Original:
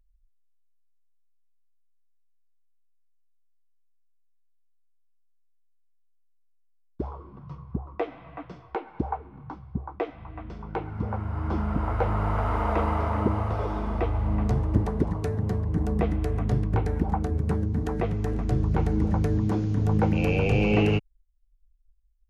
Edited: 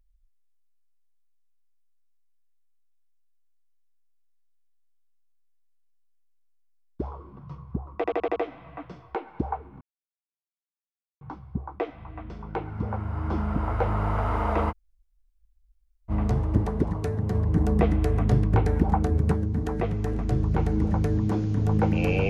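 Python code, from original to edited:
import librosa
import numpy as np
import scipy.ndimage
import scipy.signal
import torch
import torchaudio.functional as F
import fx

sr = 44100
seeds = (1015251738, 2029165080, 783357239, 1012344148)

y = fx.edit(x, sr, fx.stutter(start_s=7.96, slice_s=0.08, count=6),
    fx.insert_silence(at_s=9.41, length_s=1.4),
    fx.room_tone_fill(start_s=12.91, length_s=1.39, crossfade_s=0.04),
    fx.clip_gain(start_s=15.55, length_s=1.97, db=3.5), tone=tone)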